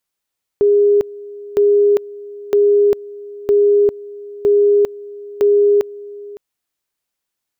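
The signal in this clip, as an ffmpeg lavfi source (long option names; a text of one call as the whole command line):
ffmpeg -f lavfi -i "aevalsrc='pow(10,(-8.5-20.5*gte(mod(t,0.96),0.4))/20)*sin(2*PI*409*t)':duration=5.76:sample_rate=44100" out.wav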